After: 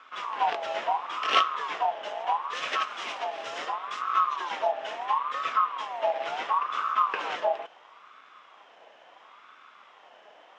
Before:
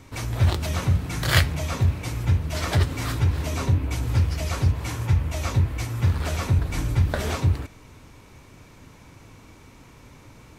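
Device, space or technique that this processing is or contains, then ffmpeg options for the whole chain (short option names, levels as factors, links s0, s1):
voice changer toy: -filter_complex "[0:a]asettb=1/sr,asplit=3[s0][s1][s2];[s0]atrim=end=2.534[s3];[s1]atrim=start=2.53:end=4.02,asetpts=PTS-STARTPTS,afade=t=in:d=0.004:c=qsin,afade=t=out:st=1.486:d=0.004:c=qsin,bass=f=250:g=-6,treble=f=4000:g=7[s4];[s2]atrim=start=4.016[s5];[s3][s4]acrossfade=d=0.004:c1=hsin:c2=qsin[s6];[s6][s5]acrossfade=d=0.004:c1=qsin:c2=hsin,aeval=exprs='val(0)*sin(2*PI*970*n/s+970*0.25/0.73*sin(2*PI*0.73*n/s))':c=same,highpass=470,equalizer=f=890:t=q:w=4:g=-7,equalizer=f=2800:t=q:w=4:g=4,equalizer=f=4500:t=q:w=4:g=-10,lowpass=f=4800:w=0.5412,lowpass=f=4800:w=1.3066"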